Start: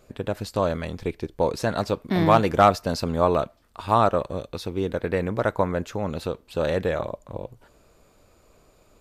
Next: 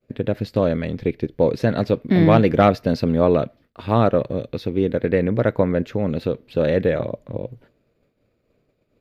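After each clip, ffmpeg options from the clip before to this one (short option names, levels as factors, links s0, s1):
-af "agate=range=0.0224:threshold=0.00447:ratio=3:detection=peak,equalizer=f=125:t=o:w=1:g=11,equalizer=f=250:t=o:w=1:g=9,equalizer=f=500:t=o:w=1:g=8,equalizer=f=1000:t=o:w=1:g=-5,equalizer=f=2000:t=o:w=1:g=8,equalizer=f=4000:t=o:w=1:g=4,equalizer=f=8000:t=o:w=1:g=-11,volume=0.668"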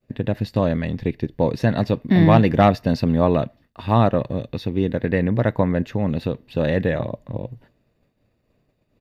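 -af "aecho=1:1:1.1:0.41"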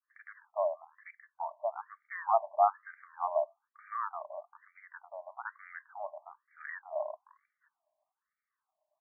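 -af "highpass=f=430:t=q:w=4.9,afftfilt=real='re*between(b*sr/1024,790*pow(1700/790,0.5+0.5*sin(2*PI*1.1*pts/sr))/1.41,790*pow(1700/790,0.5+0.5*sin(2*PI*1.1*pts/sr))*1.41)':imag='im*between(b*sr/1024,790*pow(1700/790,0.5+0.5*sin(2*PI*1.1*pts/sr))/1.41,790*pow(1700/790,0.5+0.5*sin(2*PI*1.1*pts/sr))*1.41)':win_size=1024:overlap=0.75,volume=0.376"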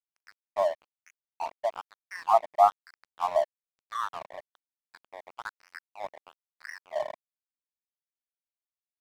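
-af "aeval=exprs='sgn(val(0))*max(abs(val(0))-0.00668,0)':c=same,volume=2"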